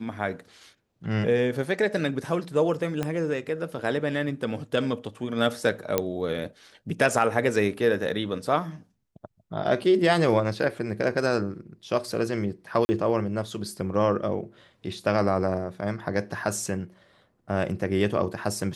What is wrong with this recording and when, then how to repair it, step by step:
0:03.03: click −14 dBFS
0:05.98: click −8 dBFS
0:12.85–0:12.89: drop-out 40 ms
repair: click removal
repair the gap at 0:12.85, 40 ms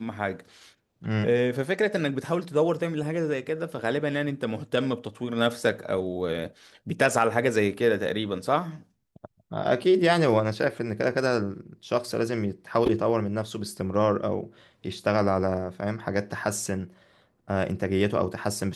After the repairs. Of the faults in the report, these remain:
0:03.03: click

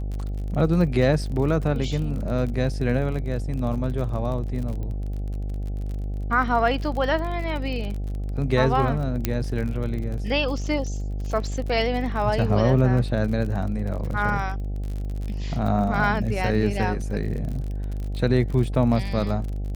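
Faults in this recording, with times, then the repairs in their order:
mains buzz 50 Hz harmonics 16 −28 dBFS
surface crackle 42 per second −31 dBFS
0:04.83: click −24 dBFS
0:09.25: click −7 dBFS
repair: click removal
hum removal 50 Hz, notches 16

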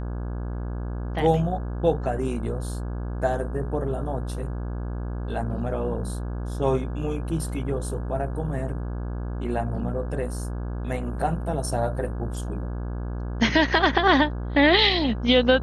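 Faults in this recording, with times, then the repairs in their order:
mains buzz 60 Hz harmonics 28 −30 dBFS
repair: hum removal 60 Hz, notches 28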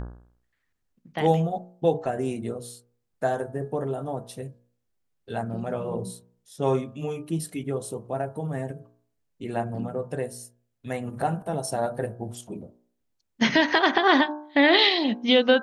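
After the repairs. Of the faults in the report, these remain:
none of them is left

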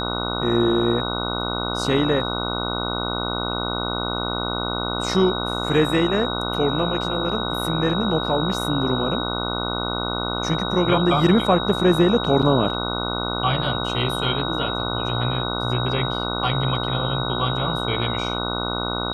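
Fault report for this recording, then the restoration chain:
mains buzz 60 Hz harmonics 25 −27 dBFS
whistle 3,800 Hz −28 dBFS
0:12.42–0:12.43: drop-out 6.2 ms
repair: notch filter 3,800 Hz, Q 30
hum removal 60 Hz, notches 25
repair the gap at 0:12.42, 6.2 ms

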